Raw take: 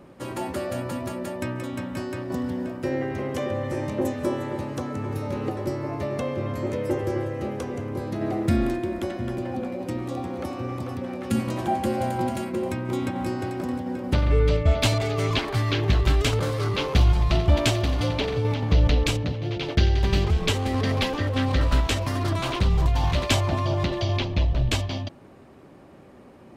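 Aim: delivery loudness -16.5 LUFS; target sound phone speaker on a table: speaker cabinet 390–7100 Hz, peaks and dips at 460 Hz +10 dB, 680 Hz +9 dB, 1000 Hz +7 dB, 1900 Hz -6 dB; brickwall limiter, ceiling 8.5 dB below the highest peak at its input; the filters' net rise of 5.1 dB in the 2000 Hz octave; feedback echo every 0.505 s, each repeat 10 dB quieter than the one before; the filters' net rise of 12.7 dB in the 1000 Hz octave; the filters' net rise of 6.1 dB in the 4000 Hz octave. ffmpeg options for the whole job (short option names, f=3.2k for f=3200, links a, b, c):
-af "equalizer=f=1k:t=o:g=7,equalizer=f=2k:t=o:g=5.5,equalizer=f=4k:t=o:g=5.5,alimiter=limit=-11dB:level=0:latency=1,highpass=f=390:w=0.5412,highpass=f=390:w=1.3066,equalizer=f=460:t=q:w=4:g=10,equalizer=f=680:t=q:w=4:g=9,equalizer=f=1k:t=q:w=4:g=7,equalizer=f=1.9k:t=q:w=4:g=-6,lowpass=f=7.1k:w=0.5412,lowpass=f=7.1k:w=1.3066,aecho=1:1:505|1010|1515|2020:0.316|0.101|0.0324|0.0104,volume=5dB"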